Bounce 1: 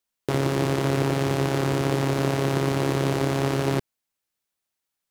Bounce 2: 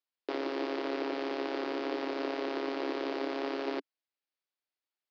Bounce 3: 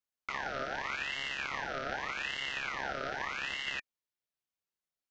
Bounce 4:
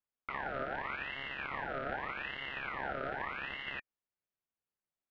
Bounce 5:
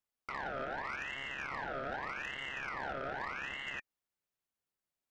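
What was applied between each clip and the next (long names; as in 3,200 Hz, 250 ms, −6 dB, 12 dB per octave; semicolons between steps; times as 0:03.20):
Chebyshev band-pass filter 280–4,900 Hz, order 4; level −8 dB
ring modulator whose carrier an LFO sweeps 1,700 Hz, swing 45%, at 0.83 Hz
high-frequency loss of the air 490 metres; level +1.5 dB
soft clipping −34 dBFS, distortion −14 dB; level +1.5 dB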